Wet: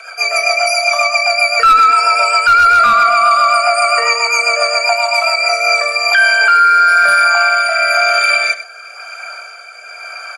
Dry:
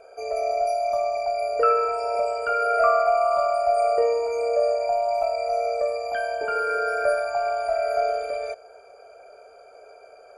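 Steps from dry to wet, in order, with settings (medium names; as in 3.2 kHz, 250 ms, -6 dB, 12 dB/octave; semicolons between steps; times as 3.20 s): high-pass 1.3 kHz 24 dB/octave; treble shelf 5.9 kHz -6.5 dB; in parallel at -5 dB: saturation -28 dBFS, distortion -11 dB; on the sum: rotary cabinet horn 7.5 Hz, later 1 Hz, at 5.12 s; one-sided clip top -25 dBFS, bottom -20 dBFS; delay 101 ms -14.5 dB; loudness maximiser +30 dB; trim -1.5 dB; Opus 48 kbps 48 kHz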